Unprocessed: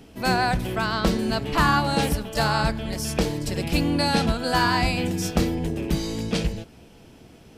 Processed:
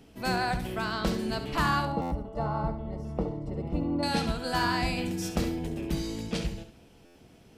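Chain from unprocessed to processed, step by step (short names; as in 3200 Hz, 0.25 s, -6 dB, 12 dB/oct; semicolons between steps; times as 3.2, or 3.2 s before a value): 1.85–4.03 polynomial smoothing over 65 samples; flutter echo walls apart 11.9 m, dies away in 0.41 s; stuck buffer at 2.01/7.05, samples 512, times 8; gain -7 dB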